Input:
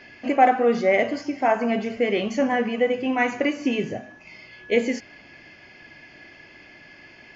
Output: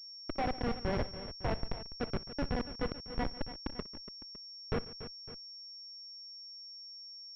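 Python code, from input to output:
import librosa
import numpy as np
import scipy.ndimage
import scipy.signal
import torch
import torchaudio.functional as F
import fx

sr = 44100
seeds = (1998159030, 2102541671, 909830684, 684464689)

y = fx.schmitt(x, sr, flips_db=-15.0)
y = fx.echo_multitap(y, sr, ms=(61, 142, 286, 557), db=(-20.0, -19.0, -13.0, -17.5))
y = fx.pwm(y, sr, carrier_hz=5500.0)
y = y * 10.0 ** (-6.5 / 20.0)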